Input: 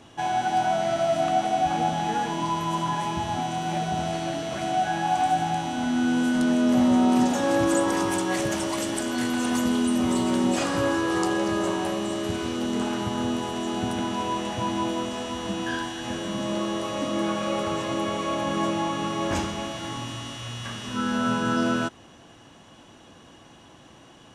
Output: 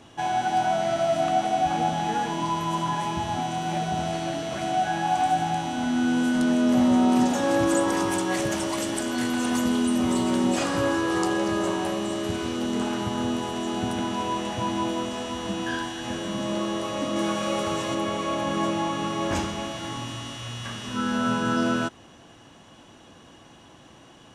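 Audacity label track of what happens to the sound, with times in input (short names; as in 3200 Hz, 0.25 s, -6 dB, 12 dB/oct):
17.160000	17.950000	high shelf 4100 Hz +5.5 dB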